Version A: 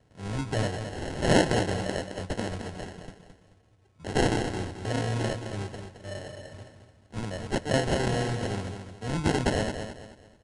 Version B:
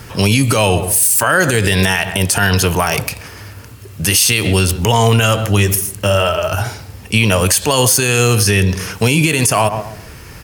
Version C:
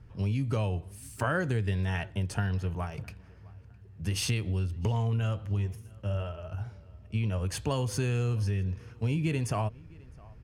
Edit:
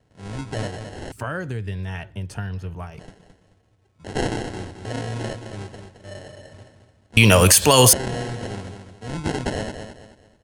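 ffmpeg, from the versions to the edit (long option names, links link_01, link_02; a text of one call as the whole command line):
ffmpeg -i take0.wav -i take1.wav -i take2.wav -filter_complex "[0:a]asplit=3[link_01][link_02][link_03];[link_01]atrim=end=1.122[link_04];[2:a]atrim=start=1.118:end=2.992[link_05];[link_02]atrim=start=2.988:end=7.172[link_06];[1:a]atrim=start=7.168:end=7.932[link_07];[link_03]atrim=start=7.928[link_08];[link_04][link_05]acrossfade=duration=0.004:curve1=hsin:curve2=hsin[link_09];[link_09][link_06]acrossfade=duration=0.004:curve1=hsin:curve2=hsin[link_10];[link_10][link_07]acrossfade=duration=0.004:curve1=hsin:curve2=hsin[link_11];[link_11][link_08]acrossfade=duration=0.004:curve1=hsin:curve2=hsin" out.wav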